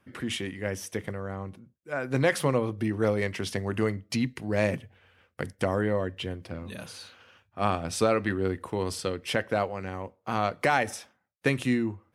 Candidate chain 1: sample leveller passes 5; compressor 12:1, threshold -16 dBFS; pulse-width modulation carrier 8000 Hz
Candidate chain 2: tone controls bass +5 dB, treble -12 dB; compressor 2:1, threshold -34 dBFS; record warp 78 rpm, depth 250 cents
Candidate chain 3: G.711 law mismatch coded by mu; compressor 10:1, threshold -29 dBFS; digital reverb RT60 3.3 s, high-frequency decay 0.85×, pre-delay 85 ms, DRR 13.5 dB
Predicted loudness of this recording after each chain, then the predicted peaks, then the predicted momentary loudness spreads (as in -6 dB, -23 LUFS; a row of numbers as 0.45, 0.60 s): -21.0, -35.0, -35.0 LUFS; -10.5, -16.0, -15.0 dBFS; 7, 9, 7 LU